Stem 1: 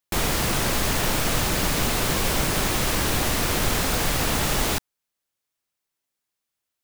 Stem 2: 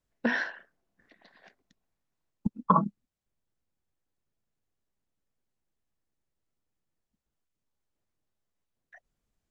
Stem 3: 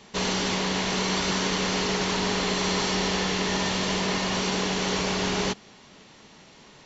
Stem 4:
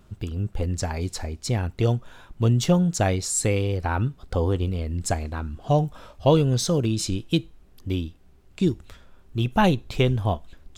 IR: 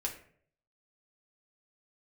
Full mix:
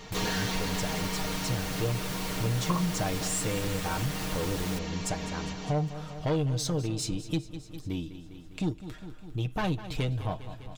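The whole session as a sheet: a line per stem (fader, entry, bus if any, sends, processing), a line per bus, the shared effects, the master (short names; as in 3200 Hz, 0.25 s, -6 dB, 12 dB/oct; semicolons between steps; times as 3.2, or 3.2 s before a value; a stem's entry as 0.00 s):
-7.5 dB, 0.00 s, no send, no echo send, dry
-1.5 dB, 0.00 s, no send, no echo send, dry
+2.0 dB, 0.00 s, no send, echo send -17.5 dB, comb 4.3 ms; auto duck -13 dB, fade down 1.80 s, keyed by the fourth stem
+1.5 dB, 0.00 s, no send, echo send -15.5 dB, soft clip -18 dBFS, distortion -12 dB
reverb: off
echo: feedback echo 0.202 s, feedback 58%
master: comb 6.5 ms, depth 57%; compressor 1.5:1, threshold -42 dBFS, peak gain reduction 10.5 dB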